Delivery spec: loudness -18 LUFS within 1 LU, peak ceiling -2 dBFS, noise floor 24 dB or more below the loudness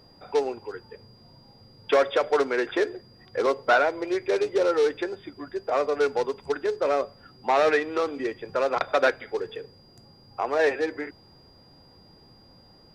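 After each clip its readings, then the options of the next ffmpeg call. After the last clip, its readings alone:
steady tone 4800 Hz; tone level -56 dBFS; loudness -25.5 LUFS; peak -9.0 dBFS; loudness target -18.0 LUFS
-> -af "bandreject=f=4.8k:w=30"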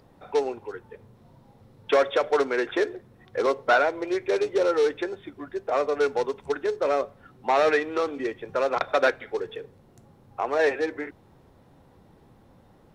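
steady tone none; loudness -25.5 LUFS; peak -8.5 dBFS; loudness target -18.0 LUFS
-> -af "volume=7.5dB,alimiter=limit=-2dB:level=0:latency=1"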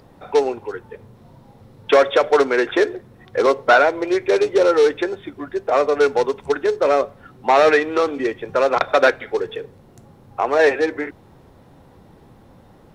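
loudness -18.0 LUFS; peak -2.0 dBFS; noise floor -49 dBFS

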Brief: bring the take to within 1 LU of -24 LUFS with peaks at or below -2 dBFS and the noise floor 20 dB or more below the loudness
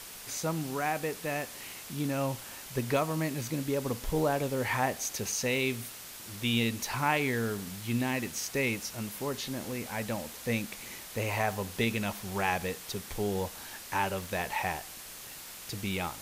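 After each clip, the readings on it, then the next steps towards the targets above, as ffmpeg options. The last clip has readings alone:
noise floor -46 dBFS; noise floor target -53 dBFS; loudness -32.5 LUFS; peak -14.0 dBFS; loudness target -24.0 LUFS
-> -af "afftdn=nr=7:nf=-46"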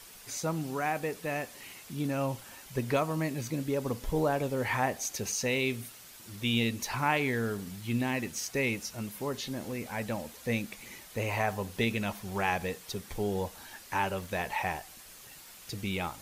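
noise floor -51 dBFS; noise floor target -53 dBFS
-> -af "afftdn=nr=6:nf=-51"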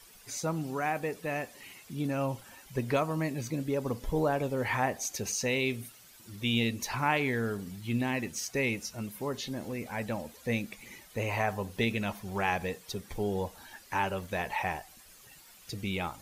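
noise floor -55 dBFS; loudness -33.0 LUFS; peak -14.0 dBFS; loudness target -24.0 LUFS
-> -af "volume=9dB"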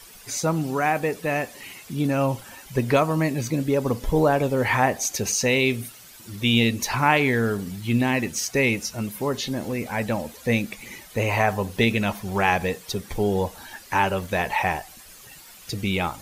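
loudness -24.0 LUFS; peak -5.0 dBFS; noise floor -46 dBFS

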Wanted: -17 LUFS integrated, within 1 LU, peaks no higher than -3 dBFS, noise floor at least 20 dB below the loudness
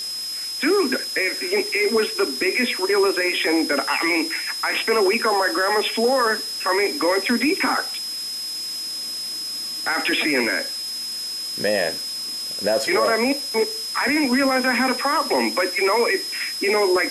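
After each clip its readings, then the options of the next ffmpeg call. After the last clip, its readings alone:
steady tone 5100 Hz; tone level -27 dBFS; noise floor -29 dBFS; noise floor target -41 dBFS; loudness -21.0 LUFS; peak -8.5 dBFS; loudness target -17.0 LUFS
-> -af "bandreject=f=5.1k:w=30"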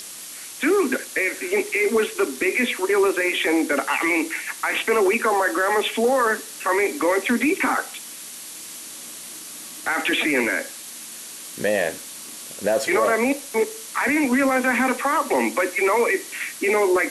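steady tone none; noise floor -37 dBFS; noise floor target -41 dBFS
-> -af "afftdn=nr=6:nf=-37"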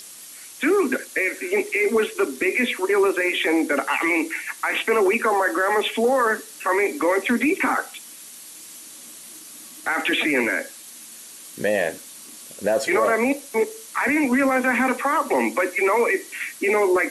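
noise floor -42 dBFS; loudness -21.5 LUFS; peak -9.5 dBFS; loudness target -17.0 LUFS
-> -af "volume=4.5dB"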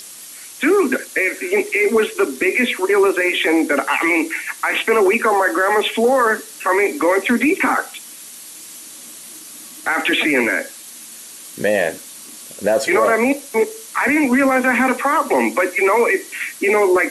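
loudness -17.0 LUFS; peak -5.0 dBFS; noise floor -37 dBFS

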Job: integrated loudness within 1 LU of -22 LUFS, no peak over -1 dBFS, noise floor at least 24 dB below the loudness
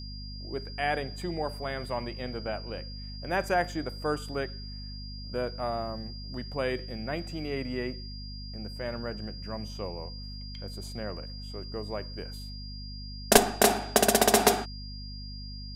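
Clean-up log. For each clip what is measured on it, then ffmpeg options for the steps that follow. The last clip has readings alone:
hum 50 Hz; harmonics up to 250 Hz; hum level -38 dBFS; steady tone 4800 Hz; tone level -44 dBFS; loudness -30.5 LUFS; peak -6.5 dBFS; loudness target -22.0 LUFS
-> -af "bandreject=f=50:t=h:w=4,bandreject=f=100:t=h:w=4,bandreject=f=150:t=h:w=4,bandreject=f=200:t=h:w=4,bandreject=f=250:t=h:w=4"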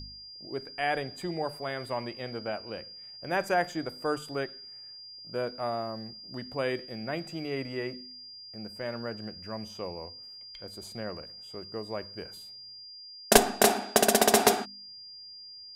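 hum none; steady tone 4800 Hz; tone level -44 dBFS
-> -af "bandreject=f=4.8k:w=30"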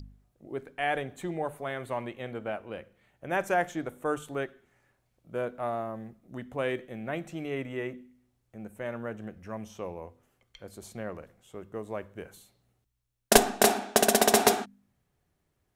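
steady tone none; loudness -29.5 LUFS; peak -6.0 dBFS; loudness target -22.0 LUFS
-> -af "volume=7.5dB,alimiter=limit=-1dB:level=0:latency=1"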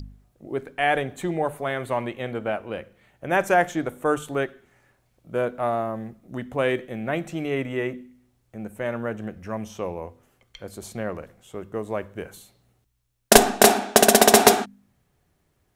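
loudness -22.5 LUFS; peak -1.0 dBFS; noise floor -69 dBFS

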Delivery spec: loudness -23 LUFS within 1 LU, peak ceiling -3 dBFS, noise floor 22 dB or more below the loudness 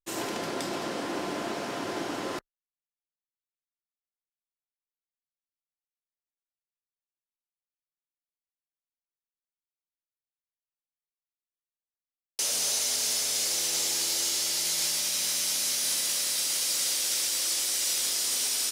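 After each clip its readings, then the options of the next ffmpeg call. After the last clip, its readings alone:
loudness -26.5 LUFS; peak -16.0 dBFS; loudness target -23.0 LUFS
-> -af "volume=3.5dB"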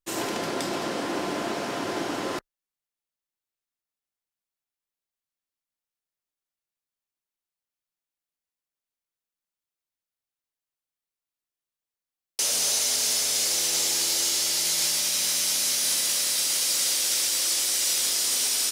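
loudness -23.0 LUFS; peak -12.5 dBFS; noise floor -92 dBFS

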